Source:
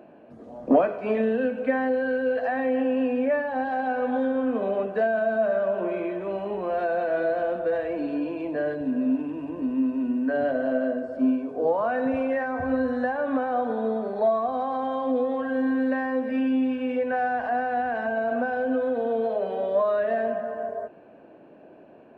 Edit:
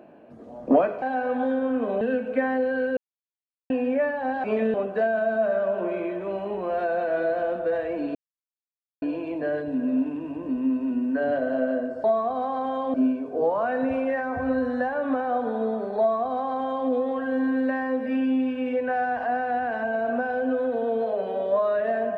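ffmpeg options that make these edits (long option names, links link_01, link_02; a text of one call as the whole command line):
ffmpeg -i in.wav -filter_complex "[0:a]asplit=10[link_01][link_02][link_03][link_04][link_05][link_06][link_07][link_08][link_09][link_10];[link_01]atrim=end=1.022[link_11];[link_02]atrim=start=3.748:end=4.742[link_12];[link_03]atrim=start=1.318:end=2.28,asetpts=PTS-STARTPTS,afade=type=out:start_time=0.958:duration=0.004:curve=hsin[link_13];[link_04]atrim=start=2.28:end=3.01,asetpts=PTS-STARTPTS,volume=0[link_14];[link_05]atrim=start=3.01:end=3.752,asetpts=PTS-STARTPTS,afade=type=in:duration=0.004:curve=hsin[link_15];[link_06]atrim=start=1.018:end=1.322[link_16];[link_07]atrim=start=4.738:end=8.15,asetpts=PTS-STARTPTS,afade=type=out:start_time=3.408:duration=0.004:curve=hsin,apad=pad_dur=0.87[link_17];[link_08]atrim=start=8.15:end=11.172,asetpts=PTS-STARTPTS,afade=type=in:duration=0.004:curve=hsin[link_18];[link_09]atrim=start=14.218:end=15.122[link_19];[link_10]atrim=start=11.168[link_20];[link_11][link_12]acrossfade=duration=0.004:curve1=hsin:curve2=hsin[link_21];[link_13][link_14][link_15]concat=n=3:v=0:a=1[link_22];[link_21][link_22]acrossfade=duration=0.004:curve1=hsin:curve2=hsin[link_23];[link_23][link_16]acrossfade=duration=0.004:curve1=hsin:curve2=hsin[link_24];[link_17][link_18]concat=n=2:v=0:a=1[link_25];[link_24][link_25]acrossfade=duration=0.004:curve1=hsin:curve2=hsin[link_26];[link_26][link_19]acrossfade=duration=0.004:curve1=hsin:curve2=hsin[link_27];[link_27][link_20]acrossfade=duration=0.004:curve1=hsin:curve2=hsin" out.wav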